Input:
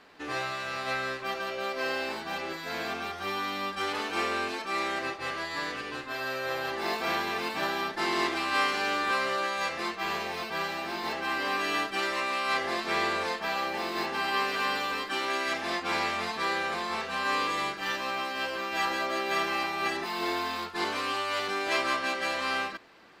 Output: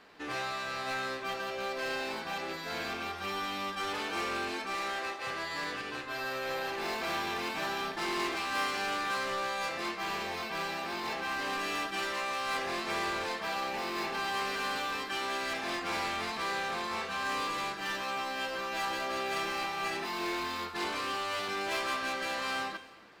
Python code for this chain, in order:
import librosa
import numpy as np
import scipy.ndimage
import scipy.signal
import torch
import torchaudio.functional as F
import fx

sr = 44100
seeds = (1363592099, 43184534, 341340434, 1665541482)

p1 = fx.rattle_buzz(x, sr, strikes_db=-43.0, level_db=-30.0)
p2 = fx.highpass(p1, sr, hz=340.0, slope=12, at=(4.74, 5.27))
p3 = 10.0 ** (-31.0 / 20.0) * (np.abs((p2 / 10.0 ** (-31.0 / 20.0) + 3.0) % 4.0 - 2.0) - 1.0)
p4 = p2 + (p3 * librosa.db_to_amplitude(-4.0))
p5 = fx.rev_gated(p4, sr, seeds[0], gate_ms=440, shape='falling', drr_db=10.0)
y = p5 * librosa.db_to_amplitude(-6.0)